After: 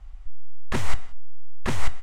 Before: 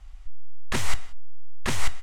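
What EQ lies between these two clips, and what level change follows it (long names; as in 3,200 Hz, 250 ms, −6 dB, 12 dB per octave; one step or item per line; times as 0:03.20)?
high-shelf EQ 2,000 Hz −9.5 dB
+2.5 dB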